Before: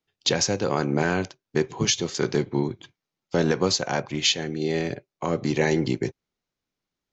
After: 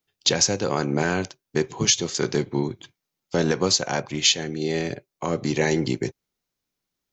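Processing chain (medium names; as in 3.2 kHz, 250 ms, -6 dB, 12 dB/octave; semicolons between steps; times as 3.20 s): treble shelf 6.9 kHz +11 dB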